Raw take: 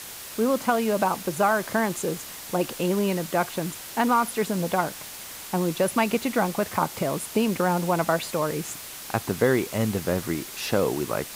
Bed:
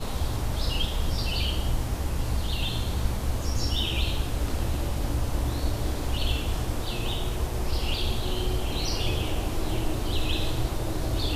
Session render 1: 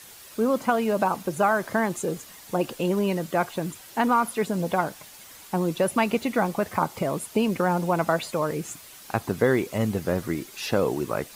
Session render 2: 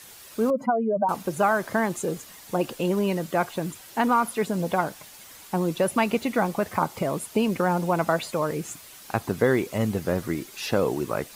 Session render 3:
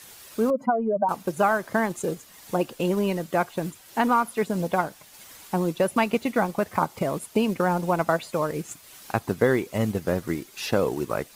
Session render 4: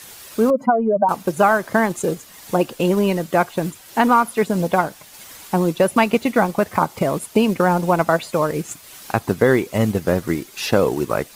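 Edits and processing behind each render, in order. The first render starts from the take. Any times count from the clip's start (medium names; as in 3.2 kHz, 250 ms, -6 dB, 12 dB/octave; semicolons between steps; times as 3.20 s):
noise reduction 9 dB, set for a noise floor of -39 dBFS
0.50–1.09 s: spectral contrast enhancement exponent 2.4
transient shaper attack +1 dB, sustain -5 dB
trim +6.5 dB; peak limiter -3 dBFS, peak gain reduction 2 dB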